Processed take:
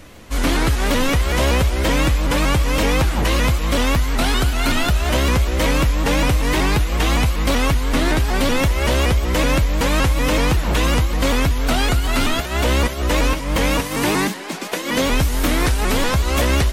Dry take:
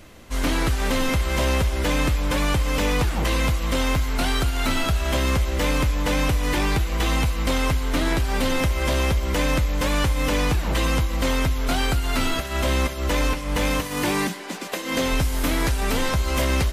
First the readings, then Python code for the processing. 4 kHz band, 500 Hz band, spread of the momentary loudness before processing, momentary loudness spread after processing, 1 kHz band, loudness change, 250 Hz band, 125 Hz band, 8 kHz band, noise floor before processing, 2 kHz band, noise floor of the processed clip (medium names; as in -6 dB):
+4.5 dB, +4.5 dB, 2 LU, 2 LU, +4.5 dB, +4.5 dB, +4.5 dB, +4.5 dB, +4.5 dB, -31 dBFS, +4.5 dB, -27 dBFS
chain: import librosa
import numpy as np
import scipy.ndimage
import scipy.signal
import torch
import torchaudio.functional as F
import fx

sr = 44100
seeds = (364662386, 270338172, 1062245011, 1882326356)

y = fx.vibrato_shape(x, sr, shape='saw_up', rate_hz=5.3, depth_cents=160.0)
y = F.gain(torch.from_numpy(y), 4.5).numpy()